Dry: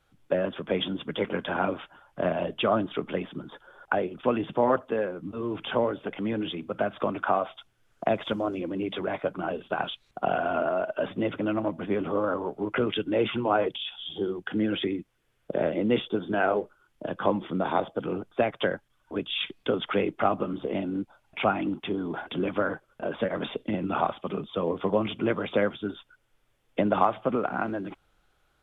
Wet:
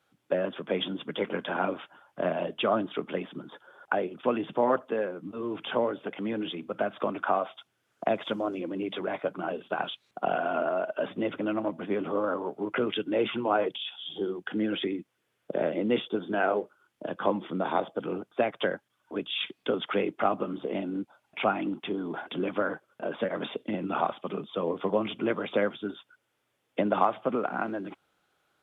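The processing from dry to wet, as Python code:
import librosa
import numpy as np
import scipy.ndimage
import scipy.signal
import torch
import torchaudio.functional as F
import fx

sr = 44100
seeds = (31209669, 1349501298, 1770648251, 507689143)

y = scipy.signal.sosfilt(scipy.signal.butter(2, 170.0, 'highpass', fs=sr, output='sos'), x)
y = y * 10.0 ** (-1.5 / 20.0)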